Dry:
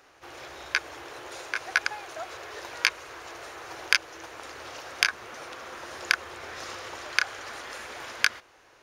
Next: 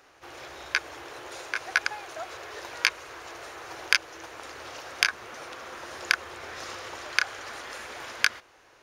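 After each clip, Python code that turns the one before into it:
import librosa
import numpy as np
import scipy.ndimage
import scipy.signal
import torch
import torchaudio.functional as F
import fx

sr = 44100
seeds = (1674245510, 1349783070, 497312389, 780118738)

y = x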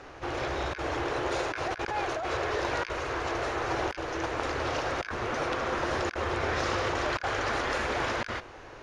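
y = scipy.signal.sosfilt(scipy.signal.butter(2, 7600.0, 'lowpass', fs=sr, output='sos'), x)
y = fx.tilt_eq(y, sr, slope=-2.5)
y = fx.over_compress(y, sr, threshold_db=-39.0, ratio=-1.0)
y = y * librosa.db_to_amplitude(7.5)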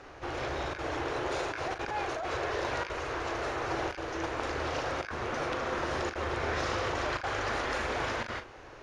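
y = fx.doubler(x, sr, ms=39.0, db=-10.0)
y = y * librosa.db_to_amplitude(-3.0)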